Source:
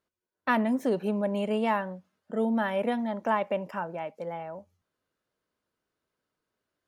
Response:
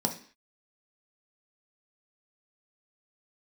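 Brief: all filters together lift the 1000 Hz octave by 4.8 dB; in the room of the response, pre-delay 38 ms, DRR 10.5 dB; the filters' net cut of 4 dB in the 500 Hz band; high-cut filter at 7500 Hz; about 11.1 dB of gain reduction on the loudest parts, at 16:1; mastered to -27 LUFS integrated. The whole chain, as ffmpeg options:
-filter_complex "[0:a]lowpass=7.5k,equalizer=f=500:t=o:g=-8,equalizer=f=1k:t=o:g=8,acompressor=threshold=-28dB:ratio=16,asplit=2[a][b];[1:a]atrim=start_sample=2205,adelay=38[c];[b][c]afir=irnorm=-1:irlink=0,volume=-17.5dB[d];[a][d]amix=inputs=2:normalize=0,volume=6dB"

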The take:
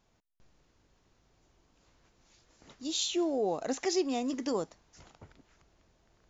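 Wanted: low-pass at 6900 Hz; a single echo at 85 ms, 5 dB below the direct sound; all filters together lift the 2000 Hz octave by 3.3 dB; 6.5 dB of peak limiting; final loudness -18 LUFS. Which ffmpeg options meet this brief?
-af "lowpass=6.9k,equalizer=f=2k:t=o:g=4,alimiter=level_in=2dB:limit=-24dB:level=0:latency=1,volume=-2dB,aecho=1:1:85:0.562,volume=16dB"

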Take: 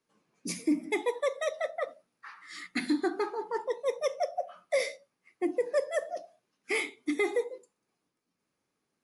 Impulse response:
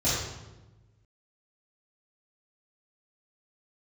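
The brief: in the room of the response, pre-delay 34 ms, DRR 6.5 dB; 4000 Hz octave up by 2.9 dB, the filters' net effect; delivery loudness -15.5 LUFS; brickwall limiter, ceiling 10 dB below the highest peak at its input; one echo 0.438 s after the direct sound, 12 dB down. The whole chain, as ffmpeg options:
-filter_complex "[0:a]equalizer=f=4k:t=o:g=3.5,alimiter=level_in=3.5dB:limit=-24dB:level=0:latency=1,volume=-3.5dB,aecho=1:1:438:0.251,asplit=2[a][b];[1:a]atrim=start_sample=2205,adelay=34[c];[b][c]afir=irnorm=-1:irlink=0,volume=-18.5dB[d];[a][d]amix=inputs=2:normalize=0,volume=21dB"

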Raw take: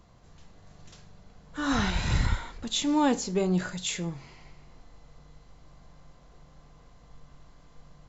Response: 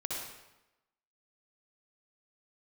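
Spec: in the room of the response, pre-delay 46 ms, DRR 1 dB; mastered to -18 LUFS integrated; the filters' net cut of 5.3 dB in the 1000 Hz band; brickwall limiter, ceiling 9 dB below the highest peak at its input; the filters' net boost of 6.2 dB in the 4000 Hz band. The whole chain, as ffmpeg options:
-filter_complex "[0:a]equalizer=f=1k:t=o:g=-7,equalizer=f=4k:t=o:g=7.5,alimiter=limit=-19.5dB:level=0:latency=1,asplit=2[a][b];[1:a]atrim=start_sample=2205,adelay=46[c];[b][c]afir=irnorm=-1:irlink=0,volume=-4dB[d];[a][d]amix=inputs=2:normalize=0,volume=10dB"

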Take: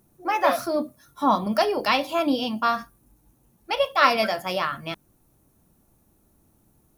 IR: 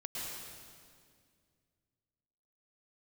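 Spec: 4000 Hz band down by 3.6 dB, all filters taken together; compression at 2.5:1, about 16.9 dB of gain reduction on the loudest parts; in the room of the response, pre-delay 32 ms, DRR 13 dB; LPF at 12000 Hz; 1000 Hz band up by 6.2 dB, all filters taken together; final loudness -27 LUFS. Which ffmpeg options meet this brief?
-filter_complex "[0:a]lowpass=12k,equalizer=f=1k:t=o:g=8,equalizer=f=4k:t=o:g=-5.5,acompressor=threshold=-34dB:ratio=2.5,asplit=2[a][b];[1:a]atrim=start_sample=2205,adelay=32[c];[b][c]afir=irnorm=-1:irlink=0,volume=-14.5dB[d];[a][d]amix=inputs=2:normalize=0,volume=5.5dB"

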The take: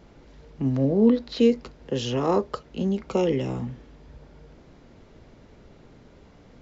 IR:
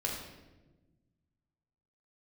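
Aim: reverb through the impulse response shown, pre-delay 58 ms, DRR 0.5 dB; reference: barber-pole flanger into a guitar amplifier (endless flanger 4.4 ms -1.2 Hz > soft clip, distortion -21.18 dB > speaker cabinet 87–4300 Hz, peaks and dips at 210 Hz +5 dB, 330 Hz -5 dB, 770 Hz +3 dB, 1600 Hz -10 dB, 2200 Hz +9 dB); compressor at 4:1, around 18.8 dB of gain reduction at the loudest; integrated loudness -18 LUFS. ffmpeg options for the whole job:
-filter_complex "[0:a]acompressor=threshold=-37dB:ratio=4,asplit=2[a][b];[1:a]atrim=start_sample=2205,adelay=58[c];[b][c]afir=irnorm=-1:irlink=0,volume=-4.5dB[d];[a][d]amix=inputs=2:normalize=0,asplit=2[e][f];[f]adelay=4.4,afreqshift=-1.2[g];[e][g]amix=inputs=2:normalize=1,asoftclip=threshold=-27.5dB,highpass=87,equalizer=f=210:t=q:w=4:g=5,equalizer=f=330:t=q:w=4:g=-5,equalizer=f=770:t=q:w=4:g=3,equalizer=f=1.6k:t=q:w=4:g=-10,equalizer=f=2.2k:t=q:w=4:g=9,lowpass=f=4.3k:w=0.5412,lowpass=f=4.3k:w=1.3066,volume=21dB"

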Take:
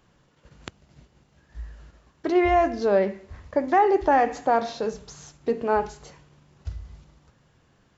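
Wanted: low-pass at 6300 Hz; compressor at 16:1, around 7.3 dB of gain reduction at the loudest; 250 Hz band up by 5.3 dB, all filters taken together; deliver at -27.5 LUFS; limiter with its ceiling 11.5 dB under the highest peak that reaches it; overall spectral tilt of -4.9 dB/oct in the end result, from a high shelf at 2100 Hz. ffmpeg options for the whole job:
-af "lowpass=6.3k,equalizer=f=250:t=o:g=7.5,highshelf=f=2.1k:g=8.5,acompressor=threshold=-19dB:ratio=16,volume=5dB,alimiter=limit=-17dB:level=0:latency=1"

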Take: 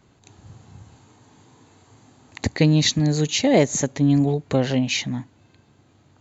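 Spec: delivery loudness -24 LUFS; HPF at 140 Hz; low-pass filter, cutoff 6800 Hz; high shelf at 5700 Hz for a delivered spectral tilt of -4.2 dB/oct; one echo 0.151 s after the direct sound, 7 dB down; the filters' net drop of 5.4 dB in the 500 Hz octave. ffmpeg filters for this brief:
-af "highpass=140,lowpass=6.8k,equalizer=f=500:t=o:g=-6.5,highshelf=f=5.7k:g=5,aecho=1:1:151:0.447,volume=-2.5dB"

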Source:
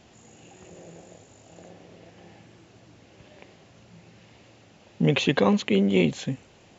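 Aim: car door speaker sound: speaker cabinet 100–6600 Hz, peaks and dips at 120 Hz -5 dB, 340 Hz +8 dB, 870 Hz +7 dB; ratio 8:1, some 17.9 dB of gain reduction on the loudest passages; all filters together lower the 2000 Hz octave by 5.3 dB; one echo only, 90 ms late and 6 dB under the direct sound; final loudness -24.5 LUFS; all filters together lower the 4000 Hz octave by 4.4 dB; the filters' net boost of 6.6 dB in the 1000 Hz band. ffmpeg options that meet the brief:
-af "equalizer=f=1k:t=o:g=5,equalizer=f=2k:t=o:g=-7.5,equalizer=f=4k:t=o:g=-3,acompressor=threshold=-35dB:ratio=8,highpass=100,equalizer=f=120:t=q:w=4:g=-5,equalizer=f=340:t=q:w=4:g=8,equalizer=f=870:t=q:w=4:g=7,lowpass=f=6.6k:w=0.5412,lowpass=f=6.6k:w=1.3066,aecho=1:1:90:0.501,volume=17.5dB"

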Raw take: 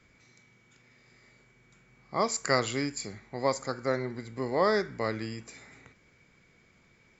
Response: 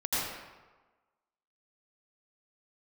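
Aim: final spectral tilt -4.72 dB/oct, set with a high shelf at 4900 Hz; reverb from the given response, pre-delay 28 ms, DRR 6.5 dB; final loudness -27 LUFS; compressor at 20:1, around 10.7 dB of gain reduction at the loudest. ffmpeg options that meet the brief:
-filter_complex "[0:a]highshelf=f=4.9k:g=-6,acompressor=threshold=-30dB:ratio=20,asplit=2[a][b];[1:a]atrim=start_sample=2205,adelay=28[c];[b][c]afir=irnorm=-1:irlink=0,volume=-15.5dB[d];[a][d]amix=inputs=2:normalize=0,volume=10dB"

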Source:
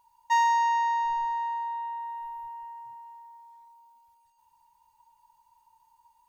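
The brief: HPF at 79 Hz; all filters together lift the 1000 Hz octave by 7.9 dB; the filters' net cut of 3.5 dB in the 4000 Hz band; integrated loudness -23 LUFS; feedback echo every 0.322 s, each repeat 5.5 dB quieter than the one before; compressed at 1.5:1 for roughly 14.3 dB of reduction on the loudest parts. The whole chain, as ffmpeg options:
-af "highpass=79,equalizer=f=1k:t=o:g=8.5,equalizer=f=4k:t=o:g=-6,acompressor=threshold=-55dB:ratio=1.5,aecho=1:1:322|644|966|1288|1610|1932|2254:0.531|0.281|0.149|0.079|0.0419|0.0222|0.0118,volume=6.5dB"

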